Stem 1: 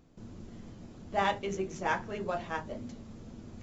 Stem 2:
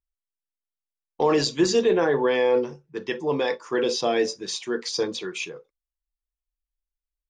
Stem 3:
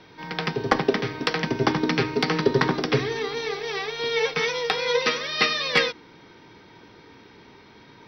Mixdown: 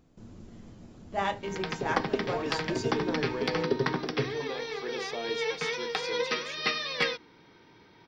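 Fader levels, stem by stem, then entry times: -1.0 dB, -14.0 dB, -7.5 dB; 0.00 s, 1.10 s, 1.25 s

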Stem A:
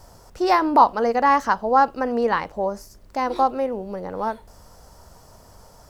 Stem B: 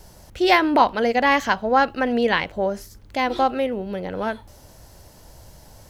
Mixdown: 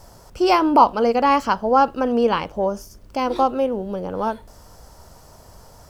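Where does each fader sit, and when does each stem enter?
+1.5 dB, -7.5 dB; 0.00 s, 0.00 s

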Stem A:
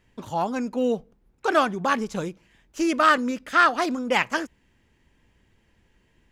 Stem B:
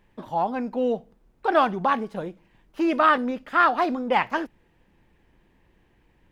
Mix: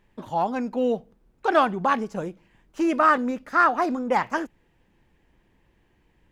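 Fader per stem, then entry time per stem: -9.5 dB, -2.5 dB; 0.00 s, 0.00 s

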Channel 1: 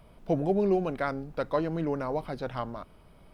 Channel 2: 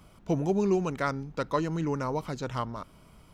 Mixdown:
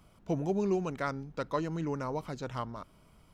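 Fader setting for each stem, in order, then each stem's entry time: -18.0 dB, -6.0 dB; 0.00 s, 0.00 s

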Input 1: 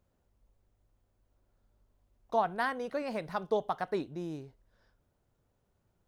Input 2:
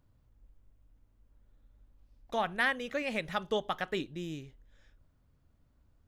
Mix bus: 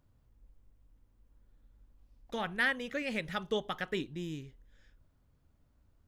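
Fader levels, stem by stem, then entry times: -9.0 dB, -1.0 dB; 0.00 s, 0.00 s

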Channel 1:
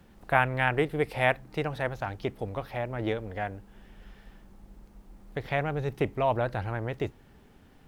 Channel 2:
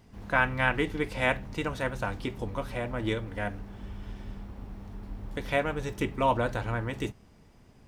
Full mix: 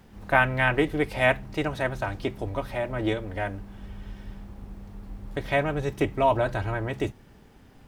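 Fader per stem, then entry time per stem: +2.0 dB, -2.0 dB; 0.00 s, 0.00 s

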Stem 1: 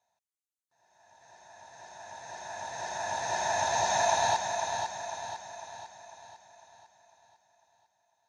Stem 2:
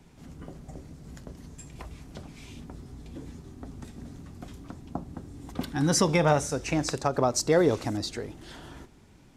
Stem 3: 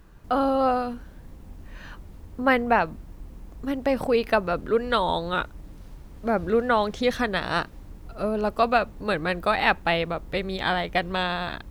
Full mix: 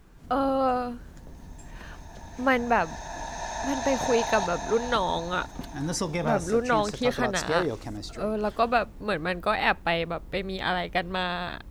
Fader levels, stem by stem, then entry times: -3.5 dB, -6.0 dB, -2.5 dB; 0.10 s, 0.00 s, 0.00 s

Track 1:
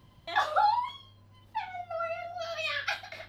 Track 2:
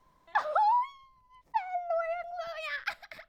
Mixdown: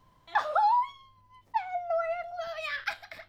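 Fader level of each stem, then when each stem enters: -10.5 dB, +1.0 dB; 0.00 s, 0.00 s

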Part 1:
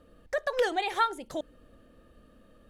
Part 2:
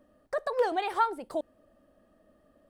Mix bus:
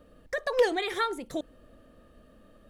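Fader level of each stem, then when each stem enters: +0.5 dB, -0.5 dB; 0.00 s, 0.00 s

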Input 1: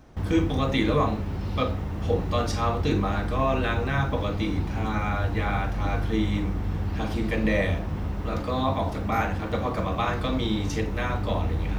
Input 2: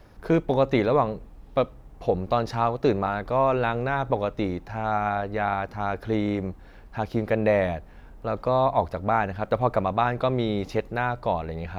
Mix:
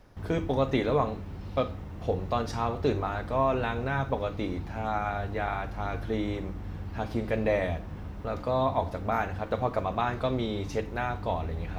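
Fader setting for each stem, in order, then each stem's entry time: -9.5 dB, -6.0 dB; 0.00 s, 0.00 s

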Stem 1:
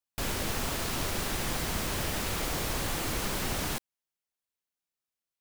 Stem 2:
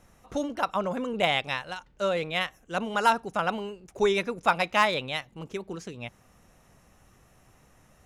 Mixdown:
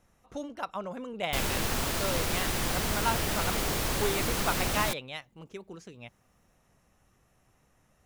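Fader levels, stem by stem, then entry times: +2.0 dB, -8.0 dB; 1.15 s, 0.00 s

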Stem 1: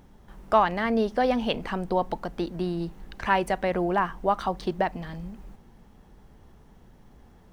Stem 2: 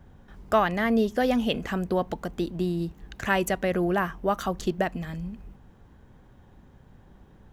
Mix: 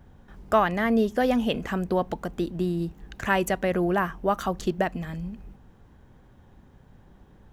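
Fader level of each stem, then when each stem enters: -14.0 dB, -0.5 dB; 0.00 s, 0.00 s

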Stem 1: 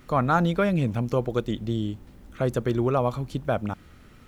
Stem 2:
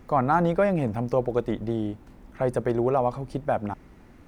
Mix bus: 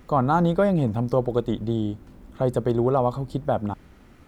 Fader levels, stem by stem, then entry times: -4.5 dB, -1.5 dB; 0.00 s, 0.00 s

